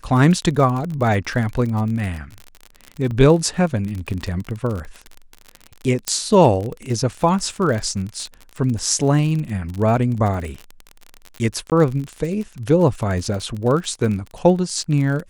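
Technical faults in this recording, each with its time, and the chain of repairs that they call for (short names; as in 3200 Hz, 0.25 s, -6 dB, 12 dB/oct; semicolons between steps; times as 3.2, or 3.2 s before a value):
crackle 41/s -25 dBFS
3.11 gap 2.6 ms
6.08 pop -5 dBFS
11.7–11.72 gap 18 ms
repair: de-click; interpolate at 3.11, 2.6 ms; interpolate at 11.7, 18 ms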